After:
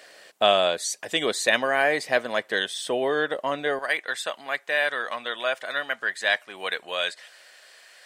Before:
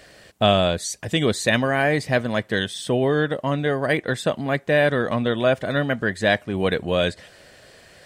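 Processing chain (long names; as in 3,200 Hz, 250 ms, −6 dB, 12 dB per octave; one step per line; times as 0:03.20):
high-pass filter 480 Hz 12 dB per octave, from 0:03.79 1,000 Hz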